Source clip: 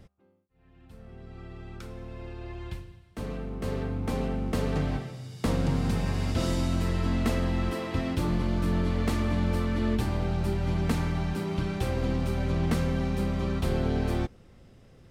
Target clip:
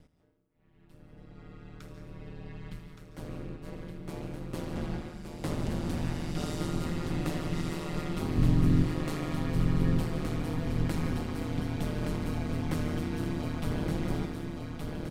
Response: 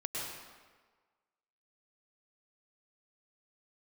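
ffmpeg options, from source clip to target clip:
-filter_complex "[0:a]asettb=1/sr,asplit=3[a][b][c];[a]atrim=end=3.564[d];[b]atrim=start=3.56:end=4.78,asetpts=PTS-STARTPTS,afade=t=in:d=0.004:c=qsin,afade=t=out:st=1.216:d=0.004:c=qsin,agate=range=-33dB:threshold=-24dB:ratio=3:detection=peak[e];[c]atrim=start=4.776[f];[d][e]acrossfade=d=0.004:c1=hsin:c2=qsin[g];[g][f]acrossfade=d=0.004:c1=qsin:c2=hsin,asplit=3[h][i][j];[h]afade=t=out:st=8.37:d=0.02[k];[i]asubboost=boost=5.5:cutoff=200,afade=t=in:st=8.37:d=0.02,afade=t=out:st=8.83:d=0.02[l];[j]afade=t=in:st=8.83:d=0.02[m];[k][l][m]amix=inputs=3:normalize=0,aecho=1:1:1170|2340|3510|4680|5850:0.596|0.262|0.115|0.0507|0.0223,asplit=2[n][o];[1:a]atrim=start_sample=2205,asetrate=79380,aresample=44100,adelay=81[p];[o][p]afir=irnorm=-1:irlink=0,volume=-4dB[q];[n][q]amix=inputs=2:normalize=0,aeval=exprs='val(0)*sin(2*PI*79*n/s)':c=same,highshelf=f=7k:g=4,volume=-4dB"

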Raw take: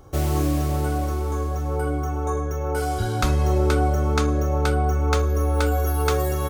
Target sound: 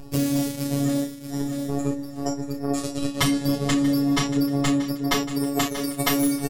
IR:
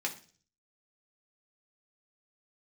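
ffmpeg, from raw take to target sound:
-filter_complex "[0:a]afftfilt=real='re*lt(hypot(re,im),0.447)':imag='im*lt(hypot(re,im),0.447)':win_size=1024:overlap=0.75,agate=range=-55dB:threshold=-24dB:ratio=16:detection=peak,equalizer=f=1.2k:t=o:w=2.3:g=-6.5,afftfilt=real='hypot(re,im)*cos(PI*b)':imag='0':win_size=1024:overlap=0.75,acompressor=mode=upward:threshold=-48dB:ratio=2.5,asetrate=36028,aresample=44100,atempo=1.22405,asplit=2[a][b];[b]adelay=32,volume=-6dB[c];[a][c]amix=inputs=2:normalize=0,apsyclip=33dB,asplit=2[d][e];[e]aecho=0:1:632|1264:0.178|0.0373[f];[d][f]amix=inputs=2:normalize=0,acompressor=threshold=-24dB:ratio=3"

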